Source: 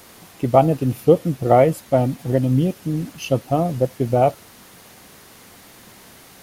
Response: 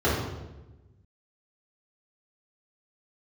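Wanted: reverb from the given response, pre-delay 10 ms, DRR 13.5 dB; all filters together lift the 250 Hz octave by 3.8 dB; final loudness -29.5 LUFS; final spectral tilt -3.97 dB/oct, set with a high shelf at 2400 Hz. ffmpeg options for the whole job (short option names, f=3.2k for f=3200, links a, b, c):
-filter_complex "[0:a]equalizer=f=250:t=o:g=5,highshelf=f=2.4k:g=-8.5,asplit=2[a][b];[1:a]atrim=start_sample=2205,adelay=10[c];[b][c]afir=irnorm=-1:irlink=0,volume=-30dB[d];[a][d]amix=inputs=2:normalize=0,volume=-12dB"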